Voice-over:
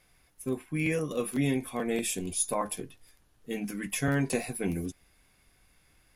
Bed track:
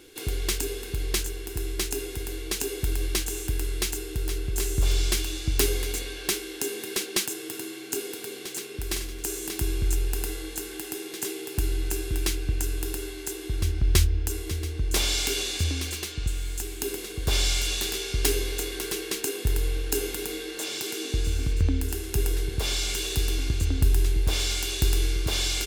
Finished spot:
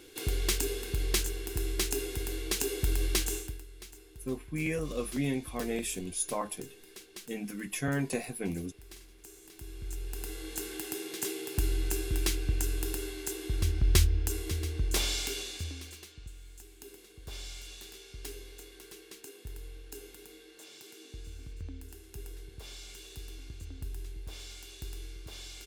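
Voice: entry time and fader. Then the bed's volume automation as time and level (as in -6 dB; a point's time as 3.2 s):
3.80 s, -3.5 dB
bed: 3.34 s -2 dB
3.65 s -20.5 dB
9.52 s -20.5 dB
10.62 s -3 dB
14.81 s -3 dB
16.31 s -19 dB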